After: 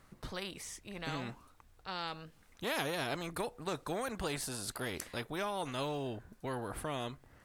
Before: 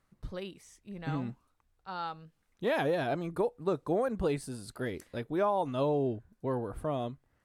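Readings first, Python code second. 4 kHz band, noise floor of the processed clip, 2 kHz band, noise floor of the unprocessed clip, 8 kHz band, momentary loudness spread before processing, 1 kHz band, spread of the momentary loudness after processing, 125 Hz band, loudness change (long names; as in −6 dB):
+6.0 dB, −64 dBFS, +0.5 dB, −75 dBFS, +9.0 dB, 13 LU, −4.5 dB, 9 LU, −6.0 dB, −5.5 dB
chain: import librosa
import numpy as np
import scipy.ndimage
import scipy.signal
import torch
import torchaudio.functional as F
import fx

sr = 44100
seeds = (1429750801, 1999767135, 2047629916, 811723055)

y = fx.spectral_comp(x, sr, ratio=2.0)
y = F.gain(torch.from_numpy(y), 1.0).numpy()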